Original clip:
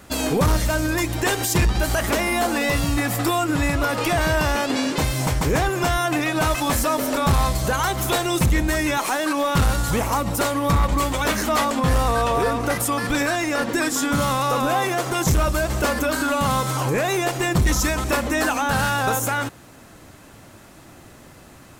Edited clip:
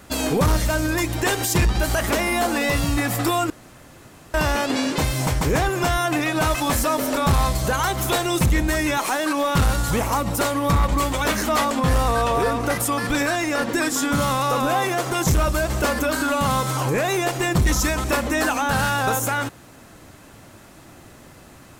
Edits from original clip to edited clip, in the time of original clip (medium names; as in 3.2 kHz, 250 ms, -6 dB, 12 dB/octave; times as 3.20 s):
3.50–4.34 s: room tone